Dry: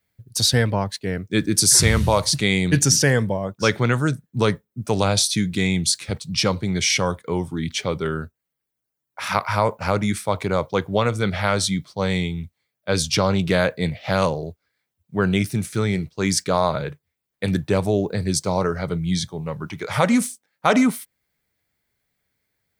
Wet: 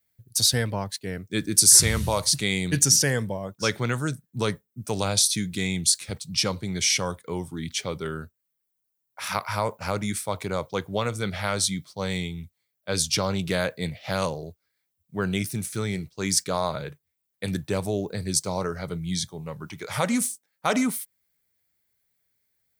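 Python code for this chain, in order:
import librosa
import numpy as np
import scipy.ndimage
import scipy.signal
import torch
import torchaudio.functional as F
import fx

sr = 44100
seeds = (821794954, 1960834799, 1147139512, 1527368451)

y = fx.high_shelf(x, sr, hz=5400.0, db=11.5)
y = F.gain(torch.from_numpy(y), -7.0).numpy()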